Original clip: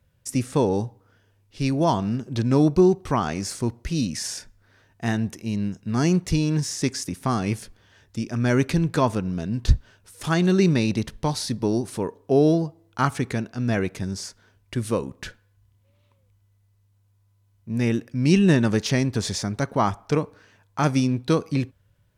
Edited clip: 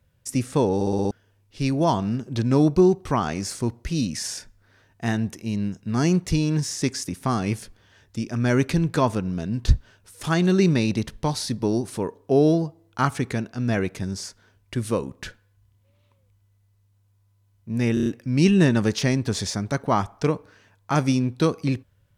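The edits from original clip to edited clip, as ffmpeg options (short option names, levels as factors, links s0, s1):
-filter_complex "[0:a]asplit=11[s0][s1][s2][s3][s4][s5][s6][s7][s8][s9][s10];[s0]atrim=end=0.812[s11];[s1]atrim=start=0.748:end=0.812[s12];[s2]atrim=start=0.748:end=0.812[s13];[s3]atrim=start=0.748:end=0.812[s14];[s4]atrim=start=0.748:end=0.812[s15];[s5]atrim=start=0.748:end=0.812[s16];[s6]atrim=start=1.108:end=17.972[s17];[s7]atrim=start=17.938:end=17.972[s18];[s8]atrim=start=17.938:end=17.972[s19];[s9]atrim=start=17.938:end=17.972[s20];[s10]atrim=start=17.938[s21];[s11][s12]acrossfade=d=0.004:c1=hsin:c2=hsin[s22];[s22][s13]acrossfade=d=0.004:c1=hsin:c2=hsin[s23];[s23][s14]acrossfade=d=0.004:c1=hsin:c2=hsin[s24];[s24][s15]acrossfade=d=0.004:c1=hsin:c2=hsin[s25];[s25][s16]acrossfade=d=0.004:c1=hsin:c2=hsin[s26];[s26][s17]acrossfade=d=0.004:c1=hsin:c2=hsin[s27];[s27][s18]acrossfade=d=0.004:c1=hsin:c2=hsin[s28];[s28][s19]acrossfade=d=0.004:c1=hsin:c2=hsin[s29];[s29][s20]acrossfade=d=0.004:c1=hsin:c2=hsin[s30];[s30][s21]acrossfade=d=0.004:c1=hsin:c2=hsin"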